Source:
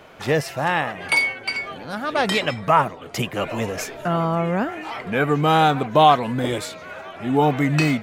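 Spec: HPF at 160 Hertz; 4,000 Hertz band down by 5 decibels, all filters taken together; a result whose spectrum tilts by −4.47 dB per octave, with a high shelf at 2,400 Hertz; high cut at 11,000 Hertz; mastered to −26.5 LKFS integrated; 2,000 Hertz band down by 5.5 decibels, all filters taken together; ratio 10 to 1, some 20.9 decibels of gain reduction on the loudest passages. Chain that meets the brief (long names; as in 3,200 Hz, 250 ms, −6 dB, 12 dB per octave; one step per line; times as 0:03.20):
high-pass filter 160 Hz
low-pass filter 11,000 Hz
parametric band 2,000 Hz −7 dB
high-shelf EQ 2,400 Hz +5 dB
parametric band 4,000 Hz −8.5 dB
downward compressor 10 to 1, threshold −32 dBFS
level +10 dB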